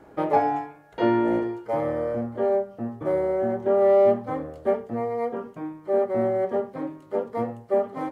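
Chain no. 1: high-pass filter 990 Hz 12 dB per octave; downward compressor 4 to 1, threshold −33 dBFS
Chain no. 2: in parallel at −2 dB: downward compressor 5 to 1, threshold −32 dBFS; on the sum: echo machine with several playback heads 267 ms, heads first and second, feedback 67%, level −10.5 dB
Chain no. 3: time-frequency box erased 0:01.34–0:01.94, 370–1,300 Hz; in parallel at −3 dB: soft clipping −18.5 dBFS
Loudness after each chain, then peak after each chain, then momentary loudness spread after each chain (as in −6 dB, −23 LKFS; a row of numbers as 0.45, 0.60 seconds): −38.5, −21.5, −21.5 LKFS; −21.5, −7.0, −7.0 dBFS; 8, 9, 11 LU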